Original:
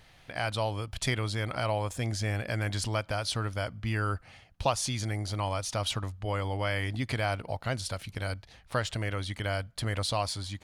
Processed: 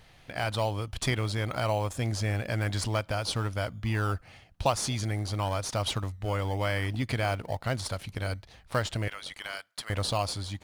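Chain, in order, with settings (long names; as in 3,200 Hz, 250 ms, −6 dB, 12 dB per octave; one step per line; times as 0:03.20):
0:09.08–0:09.90: high-pass filter 1,300 Hz 12 dB per octave
in parallel at −12 dB: sample-and-hold swept by an LFO 18×, swing 60% 1 Hz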